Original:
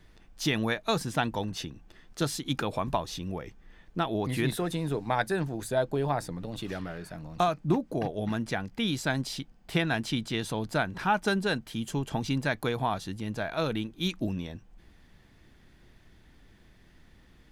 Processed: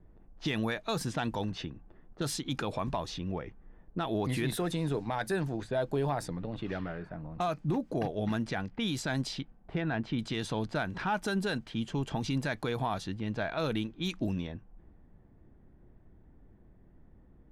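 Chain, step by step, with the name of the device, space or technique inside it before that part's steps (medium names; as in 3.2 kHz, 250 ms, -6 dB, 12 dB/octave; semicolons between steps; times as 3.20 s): level-controlled noise filter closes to 640 Hz, open at -25.5 dBFS; 9.75–10.19 s: Bessel low-pass 1.7 kHz, order 2; soft clipper into limiter (saturation -14.5 dBFS, distortion -24 dB; peak limiter -22.5 dBFS, peak gain reduction 6.5 dB)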